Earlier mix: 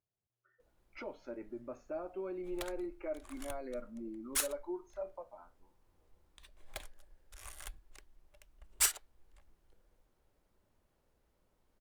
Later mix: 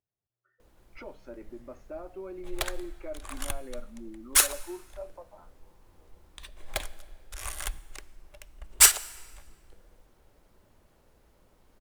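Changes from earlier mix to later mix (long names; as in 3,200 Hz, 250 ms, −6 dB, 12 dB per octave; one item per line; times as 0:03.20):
background +10.0 dB
reverb: on, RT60 1.6 s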